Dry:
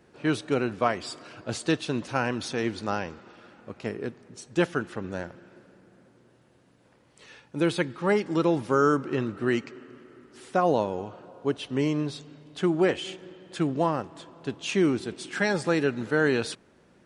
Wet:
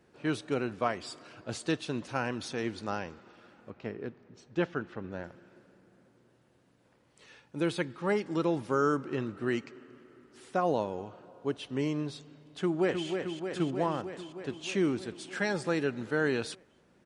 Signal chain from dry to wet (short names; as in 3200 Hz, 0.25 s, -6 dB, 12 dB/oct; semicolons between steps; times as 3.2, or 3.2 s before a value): 3.7–5.24 air absorption 160 m; 12.6–13.08 echo throw 0.31 s, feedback 75%, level -6 dB; gain -5.5 dB